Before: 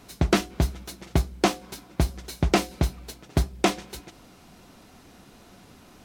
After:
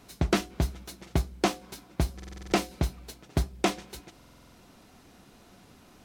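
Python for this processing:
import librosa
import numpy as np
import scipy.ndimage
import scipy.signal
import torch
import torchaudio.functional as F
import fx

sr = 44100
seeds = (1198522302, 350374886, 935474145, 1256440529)

y = fx.buffer_glitch(x, sr, at_s=(2.15, 4.17), block=2048, repeats=7)
y = y * librosa.db_to_amplitude(-4.0)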